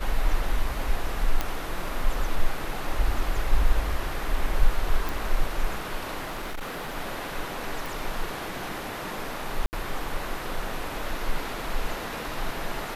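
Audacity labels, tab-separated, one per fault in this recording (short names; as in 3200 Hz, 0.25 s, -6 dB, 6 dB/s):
1.410000	1.410000	pop -11 dBFS
5.090000	5.090000	pop
6.240000	6.970000	clipped -29 dBFS
7.860000	7.860000	pop
9.660000	9.730000	gap 69 ms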